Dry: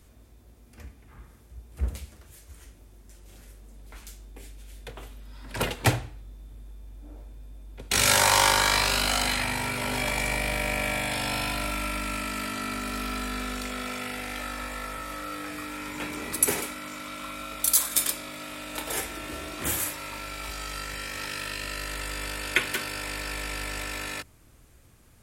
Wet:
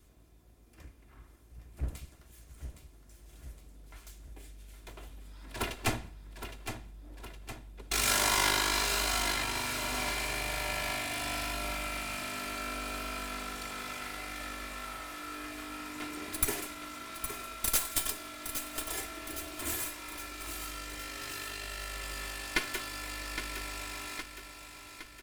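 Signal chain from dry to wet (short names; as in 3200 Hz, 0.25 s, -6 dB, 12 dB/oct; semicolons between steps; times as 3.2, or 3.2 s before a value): minimum comb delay 2.9 ms; on a send: feedback echo 0.814 s, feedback 56%, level -9 dB; on the sum: gain -5.5 dB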